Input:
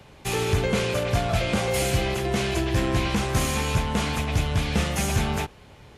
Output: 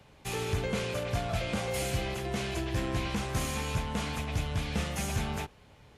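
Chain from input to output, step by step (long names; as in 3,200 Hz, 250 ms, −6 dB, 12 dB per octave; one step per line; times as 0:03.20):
notch filter 370 Hz, Q 12
level −8 dB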